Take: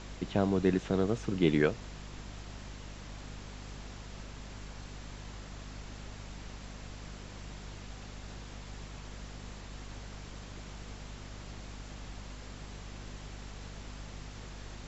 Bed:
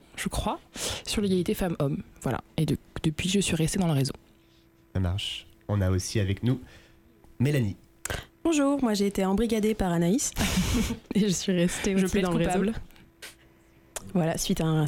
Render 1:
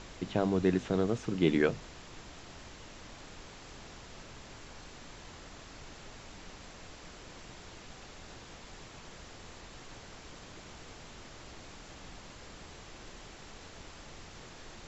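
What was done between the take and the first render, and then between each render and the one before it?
notches 50/100/150/200/250 Hz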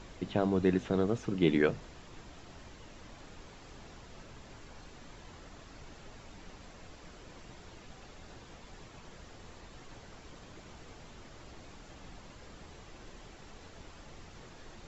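denoiser 6 dB, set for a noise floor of -51 dBFS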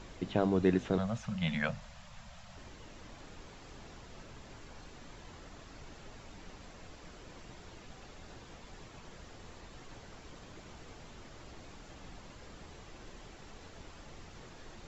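0.98–2.57 elliptic band-stop 220–550 Hz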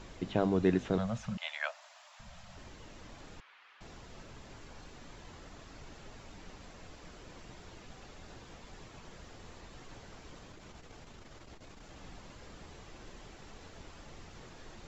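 1.37–2.2 Chebyshev high-pass 610 Hz, order 5; 3.4–3.81 Butterworth band-pass 1900 Hz, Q 0.93; 10.39–11.96 core saturation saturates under 57 Hz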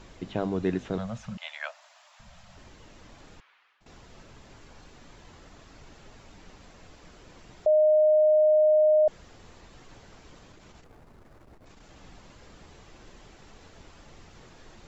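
3.34–3.86 fade out, to -14 dB; 7.66–9.08 bleep 615 Hz -16.5 dBFS; 10.84–11.66 median filter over 15 samples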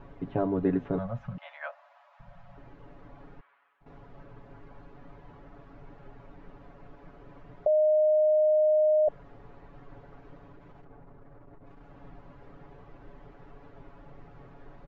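LPF 1300 Hz 12 dB/oct; comb 7.1 ms, depth 76%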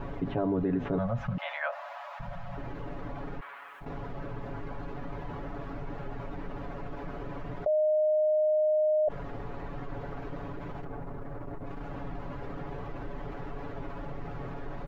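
limiter -22 dBFS, peak gain reduction 7.5 dB; fast leveller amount 50%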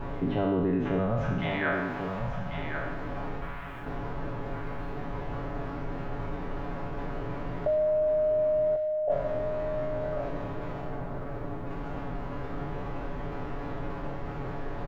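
spectral trails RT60 1.11 s; on a send: feedback echo 1.092 s, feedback 18%, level -7 dB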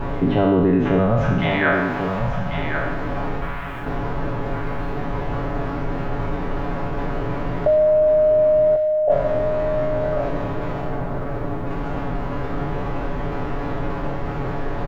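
gain +10 dB

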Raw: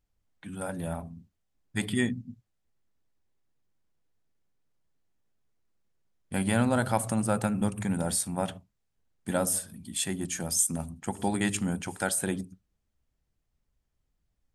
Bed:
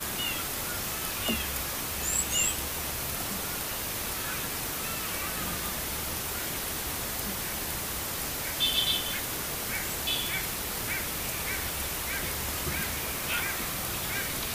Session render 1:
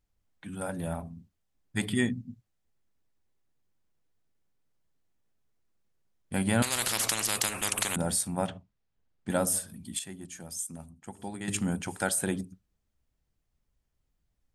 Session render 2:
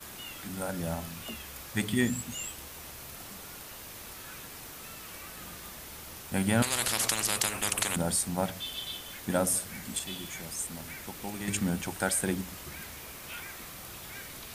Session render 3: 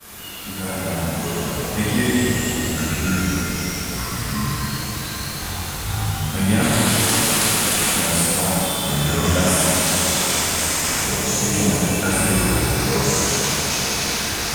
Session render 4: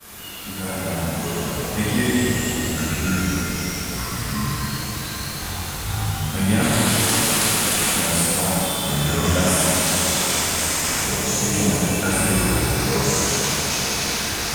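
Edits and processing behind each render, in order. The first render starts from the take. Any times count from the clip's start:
6.62–7.96 spectral compressor 10:1; 8.47–9.3 air absorption 98 m; 9.99–11.48 gain -10.5 dB
add bed -11.5 dB
echoes that change speed 0.402 s, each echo -5 st, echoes 3; shimmer reverb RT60 3.6 s, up +7 st, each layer -8 dB, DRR -10 dB
gain -1 dB

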